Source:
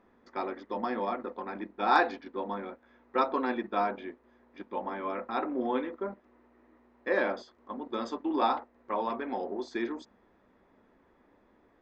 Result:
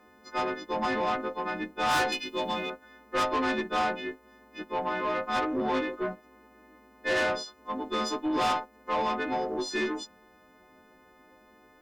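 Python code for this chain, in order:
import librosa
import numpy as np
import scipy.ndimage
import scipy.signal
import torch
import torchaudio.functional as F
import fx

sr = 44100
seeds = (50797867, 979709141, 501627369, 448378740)

y = fx.freq_snap(x, sr, grid_st=3)
y = fx.high_shelf_res(y, sr, hz=2100.0, db=7.0, q=3.0, at=(2.12, 2.7))
y = fx.tube_stage(y, sr, drive_db=29.0, bias=0.25)
y = F.gain(torch.from_numpy(y), 6.0).numpy()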